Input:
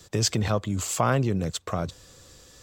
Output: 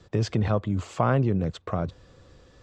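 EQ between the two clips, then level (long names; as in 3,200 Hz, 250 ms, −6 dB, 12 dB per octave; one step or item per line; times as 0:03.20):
head-to-tape spacing loss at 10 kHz 29 dB
+2.0 dB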